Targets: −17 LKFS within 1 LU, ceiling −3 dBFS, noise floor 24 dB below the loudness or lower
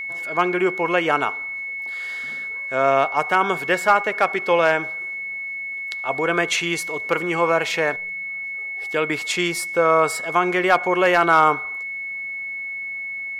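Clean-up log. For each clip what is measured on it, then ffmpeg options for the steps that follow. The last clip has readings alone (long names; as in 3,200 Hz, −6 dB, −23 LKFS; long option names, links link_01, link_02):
interfering tone 2,200 Hz; level of the tone −27 dBFS; integrated loudness −21.0 LKFS; sample peak −5.0 dBFS; target loudness −17.0 LKFS
→ -af "bandreject=frequency=2200:width=30"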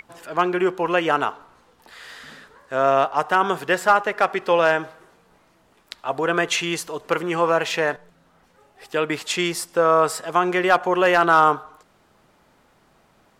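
interfering tone none found; integrated loudness −20.5 LKFS; sample peak −5.5 dBFS; target loudness −17.0 LKFS
→ -af "volume=3.5dB,alimiter=limit=-3dB:level=0:latency=1"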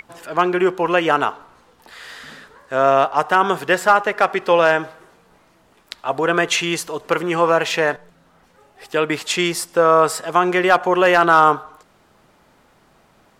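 integrated loudness −17.5 LKFS; sample peak −3.0 dBFS; background noise floor −56 dBFS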